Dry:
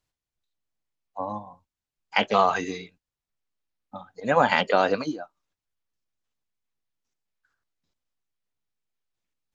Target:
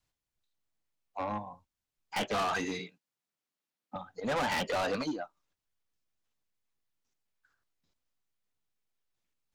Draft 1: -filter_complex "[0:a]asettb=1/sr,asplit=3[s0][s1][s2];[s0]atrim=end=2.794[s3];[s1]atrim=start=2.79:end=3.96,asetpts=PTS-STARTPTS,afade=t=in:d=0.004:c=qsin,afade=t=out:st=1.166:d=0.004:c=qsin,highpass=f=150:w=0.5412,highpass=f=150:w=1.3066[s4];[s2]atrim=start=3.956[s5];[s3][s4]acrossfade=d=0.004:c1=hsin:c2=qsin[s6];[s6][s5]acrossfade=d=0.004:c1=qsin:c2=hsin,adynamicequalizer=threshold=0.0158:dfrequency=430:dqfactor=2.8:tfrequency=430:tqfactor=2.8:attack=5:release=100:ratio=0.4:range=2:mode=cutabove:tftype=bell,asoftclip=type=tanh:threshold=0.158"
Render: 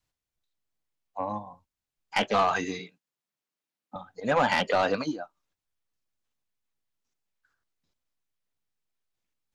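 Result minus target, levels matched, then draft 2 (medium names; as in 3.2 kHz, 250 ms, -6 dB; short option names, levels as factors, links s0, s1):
saturation: distortion -8 dB
-filter_complex "[0:a]asettb=1/sr,asplit=3[s0][s1][s2];[s0]atrim=end=2.794[s3];[s1]atrim=start=2.79:end=3.96,asetpts=PTS-STARTPTS,afade=t=in:d=0.004:c=qsin,afade=t=out:st=1.166:d=0.004:c=qsin,highpass=f=150:w=0.5412,highpass=f=150:w=1.3066[s4];[s2]atrim=start=3.956[s5];[s3][s4]acrossfade=d=0.004:c1=hsin:c2=qsin[s6];[s6][s5]acrossfade=d=0.004:c1=qsin:c2=hsin,adynamicequalizer=threshold=0.0158:dfrequency=430:dqfactor=2.8:tfrequency=430:tqfactor=2.8:attack=5:release=100:ratio=0.4:range=2:mode=cutabove:tftype=bell,asoftclip=type=tanh:threshold=0.0398"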